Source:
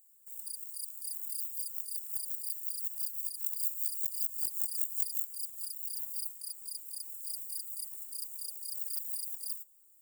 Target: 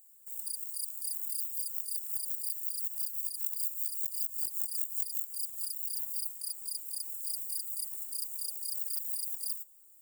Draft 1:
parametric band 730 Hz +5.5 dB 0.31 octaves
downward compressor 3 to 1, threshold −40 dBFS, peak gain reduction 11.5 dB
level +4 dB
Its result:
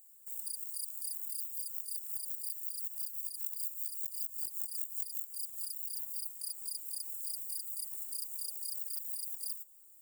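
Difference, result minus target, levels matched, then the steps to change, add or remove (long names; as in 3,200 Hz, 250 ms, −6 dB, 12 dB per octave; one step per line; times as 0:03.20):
downward compressor: peak gain reduction +4.5 dB
change: downward compressor 3 to 1, threshold −33.5 dBFS, peak gain reduction 7 dB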